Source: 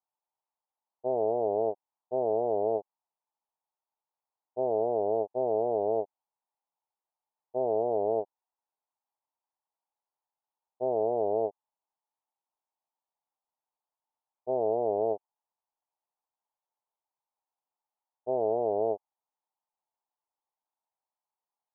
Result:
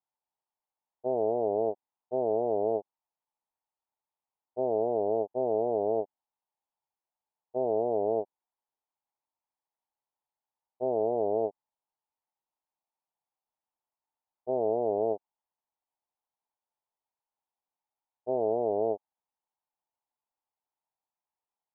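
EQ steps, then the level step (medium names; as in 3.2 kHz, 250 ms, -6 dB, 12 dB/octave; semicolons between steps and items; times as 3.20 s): dynamic bell 250 Hz, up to +4 dB, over -45 dBFS, Q 1.3; distance through air 390 m; 0.0 dB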